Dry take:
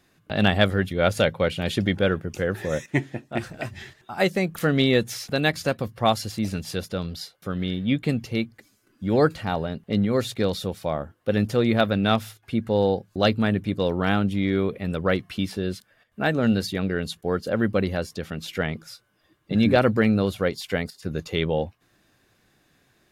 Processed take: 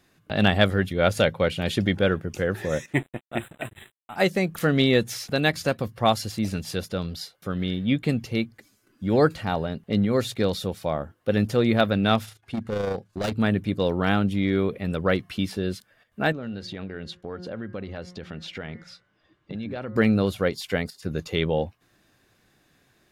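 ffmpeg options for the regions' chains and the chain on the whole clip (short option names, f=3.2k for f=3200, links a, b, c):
-filter_complex "[0:a]asettb=1/sr,asplit=3[a][b][c];[a]atrim=end=2.934[d];[b]atrim=start=2.93:end=4.16,asetpts=PTS-STARTPTS,afade=t=in:d=0.004:c=qsin,afade=t=out:st=1.226:d=0.004:c=qsin,bass=f=250:g=-1,treble=f=4k:g=6,aeval=exprs='sgn(val(0))*max(abs(val(0))-0.00944,0)':c=same,asuperstop=centerf=5400:order=20:qfactor=1.6[e];[c]atrim=start=4.156[f];[d][e]acrossfade=d=0.004:c1=hsin:c2=qsin[g];[g][f]acrossfade=d=0.004:c1=qsin:c2=hsin,asettb=1/sr,asplit=3[h][i][j];[h]atrim=end=12.254[k];[i]atrim=start=12.25:end=13.37,asetpts=PTS-STARTPTS,afade=t=in:d=0.004:c=qsin,afade=t=out:st=1.116:d=0.004:c=qsin,lowpass=11k,asoftclip=type=hard:threshold=-22dB,tremolo=f=27:d=0.462[l];[j]atrim=start=13.366[m];[k][l]acrossfade=d=0.004:c1=hsin:c2=qsin[n];[n][m]acrossfade=d=0.004:c1=qsin:c2=hsin,asettb=1/sr,asplit=3[o][p][q];[o]atrim=end=16.324[r];[p]atrim=start=16.32:end=19.96,asetpts=PTS-STARTPTS,afade=t=in:d=0.004:c=qsin,afade=t=out:st=3.636:d=0.004:c=qsin,lowpass=4.5k,bandreject=f=179.2:t=h:w=4,bandreject=f=358.4:t=h:w=4,bandreject=f=537.6:t=h:w=4,bandreject=f=716.8:t=h:w=4,bandreject=f=896:t=h:w=4,bandreject=f=1.0752k:t=h:w=4,bandreject=f=1.2544k:t=h:w=4,bandreject=f=1.4336k:t=h:w=4,bandreject=f=1.6128k:t=h:w=4,bandreject=f=1.792k:t=h:w=4,bandreject=f=1.9712k:t=h:w=4,bandreject=f=2.1504k:t=h:w=4,acompressor=threshold=-32dB:ratio=4:attack=3.2:release=140:knee=1:detection=peak[s];[q]atrim=start=19.956[t];[r][s]acrossfade=d=0.004:c1=hsin:c2=qsin[u];[u][t]acrossfade=d=0.004:c1=qsin:c2=hsin"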